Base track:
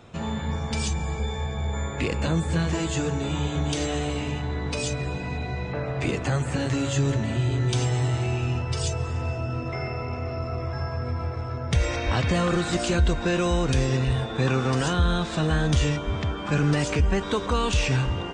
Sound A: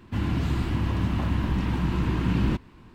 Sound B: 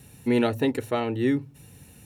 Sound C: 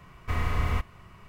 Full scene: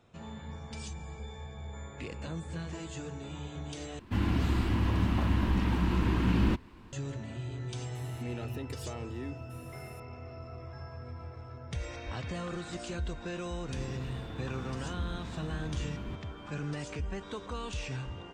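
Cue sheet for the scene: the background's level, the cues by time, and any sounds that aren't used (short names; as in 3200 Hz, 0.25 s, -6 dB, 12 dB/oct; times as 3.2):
base track -14.5 dB
3.99 replace with A -1.5 dB + bell 140 Hz -14 dB 0.22 oct
7.95 add B -5 dB + compressor 4:1, threshold -35 dBFS
13.59 add A -6.5 dB + compressor 2:1, threshold -40 dBFS
not used: C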